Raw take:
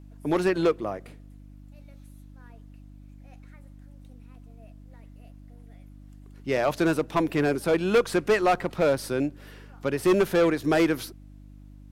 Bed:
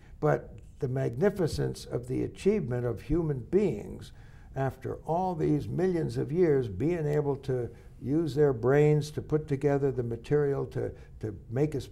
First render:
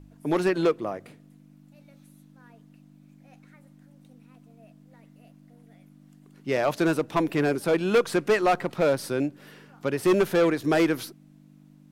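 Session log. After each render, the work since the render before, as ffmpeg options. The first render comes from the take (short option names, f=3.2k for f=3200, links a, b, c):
-af "bandreject=f=50:t=h:w=4,bandreject=f=100:t=h:w=4"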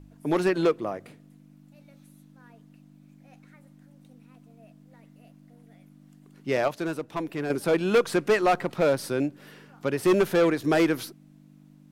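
-filter_complex "[0:a]asplit=3[a][b][c];[a]atrim=end=6.682[d];[b]atrim=start=6.678:end=7.502,asetpts=PTS-STARTPTS,volume=-7dB[e];[c]atrim=start=7.498[f];[d][e]acrossfade=d=0.004:c1=hsin:c2=hsin[g];[g][f]acrossfade=d=0.004:c1=hsin:c2=hsin"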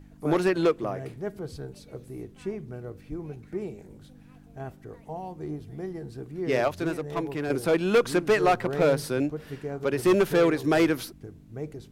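-filter_complex "[1:a]volume=-8dB[a];[0:a][a]amix=inputs=2:normalize=0"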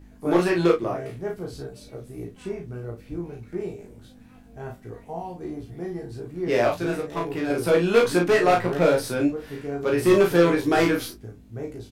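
-filter_complex "[0:a]asplit=2[a][b];[b]adelay=17,volume=-3dB[c];[a][c]amix=inputs=2:normalize=0,aecho=1:1:35|64:0.668|0.158"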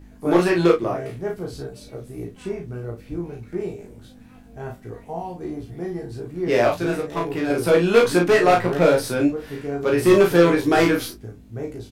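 -af "volume=3dB"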